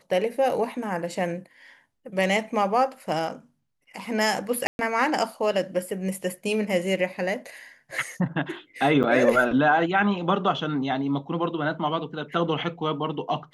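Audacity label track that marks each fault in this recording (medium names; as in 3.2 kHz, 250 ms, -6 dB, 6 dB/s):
4.670000	4.790000	dropout 121 ms
9.030000	9.040000	dropout 8.5 ms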